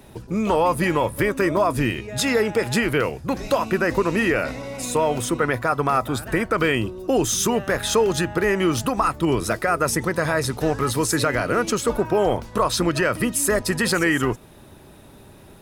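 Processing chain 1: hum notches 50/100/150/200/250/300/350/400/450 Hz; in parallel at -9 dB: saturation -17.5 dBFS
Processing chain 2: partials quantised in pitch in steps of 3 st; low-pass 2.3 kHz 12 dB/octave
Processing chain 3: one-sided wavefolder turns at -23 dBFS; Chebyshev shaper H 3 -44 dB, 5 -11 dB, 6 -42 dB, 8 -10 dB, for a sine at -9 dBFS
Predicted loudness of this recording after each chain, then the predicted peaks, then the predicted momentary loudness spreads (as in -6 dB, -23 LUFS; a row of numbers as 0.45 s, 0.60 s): -20.0 LUFS, -21.0 LUFS, -16.5 LUFS; -7.5 dBFS, -6.0 dBFS, -6.0 dBFS; 4 LU, 5 LU, 4 LU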